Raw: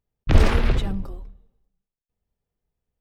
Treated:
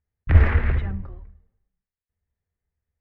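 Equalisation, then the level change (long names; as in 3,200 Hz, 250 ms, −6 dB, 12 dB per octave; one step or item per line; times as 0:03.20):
low-pass with resonance 1,900 Hz, resonance Q 3.4
parametric band 80 Hz +13.5 dB 0.89 octaves
−7.0 dB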